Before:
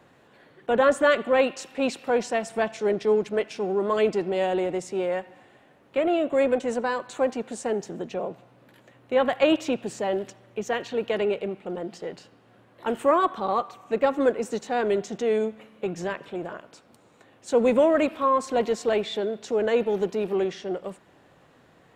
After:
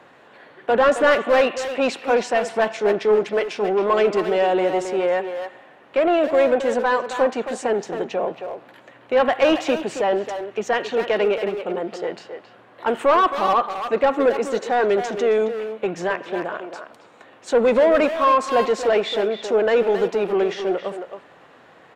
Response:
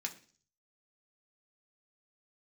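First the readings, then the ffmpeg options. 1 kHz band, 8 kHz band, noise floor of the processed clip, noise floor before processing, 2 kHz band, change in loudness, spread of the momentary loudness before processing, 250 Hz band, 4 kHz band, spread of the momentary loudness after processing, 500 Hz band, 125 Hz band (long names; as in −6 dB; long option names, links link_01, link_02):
+6.5 dB, +2.5 dB, −50 dBFS, −58 dBFS, +6.5 dB, +5.0 dB, 12 LU, +2.0 dB, +5.5 dB, 11 LU, +5.0 dB, can't be measured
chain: -filter_complex "[0:a]asplit=2[link_01][link_02];[link_02]highpass=frequency=720:poles=1,volume=17dB,asoftclip=type=tanh:threshold=-7dB[link_03];[link_01][link_03]amix=inputs=2:normalize=0,lowpass=frequency=2300:poles=1,volume=-6dB,asplit=2[link_04][link_05];[link_05]adelay=270,highpass=300,lowpass=3400,asoftclip=type=hard:threshold=-17.5dB,volume=-7dB[link_06];[link_04][link_06]amix=inputs=2:normalize=0"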